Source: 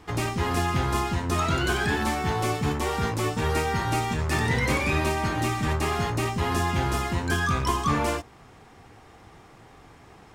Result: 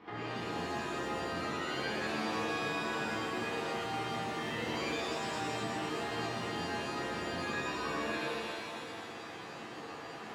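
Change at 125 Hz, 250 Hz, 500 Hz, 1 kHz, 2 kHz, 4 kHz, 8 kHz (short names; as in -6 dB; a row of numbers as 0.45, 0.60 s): -19.0, -10.0, -8.0, -10.0, -8.0, -6.0, -12.5 dB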